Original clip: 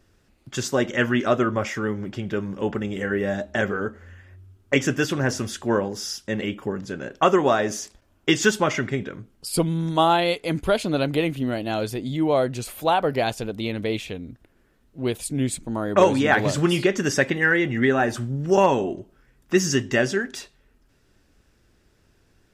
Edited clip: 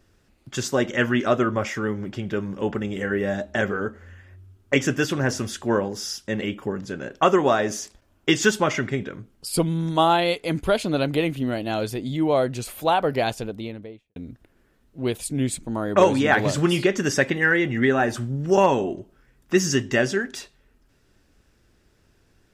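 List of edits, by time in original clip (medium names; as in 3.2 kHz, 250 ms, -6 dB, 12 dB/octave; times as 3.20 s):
13.26–14.16 s: studio fade out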